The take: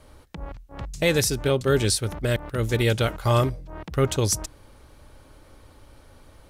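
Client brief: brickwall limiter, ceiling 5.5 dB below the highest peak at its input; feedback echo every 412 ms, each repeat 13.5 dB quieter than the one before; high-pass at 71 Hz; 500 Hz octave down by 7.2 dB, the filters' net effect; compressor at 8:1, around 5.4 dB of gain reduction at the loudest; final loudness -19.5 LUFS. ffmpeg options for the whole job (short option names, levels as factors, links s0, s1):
-af "highpass=71,equalizer=f=500:t=o:g=-9,acompressor=threshold=0.0631:ratio=8,alimiter=limit=0.0841:level=0:latency=1,aecho=1:1:412|824:0.211|0.0444,volume=4.47"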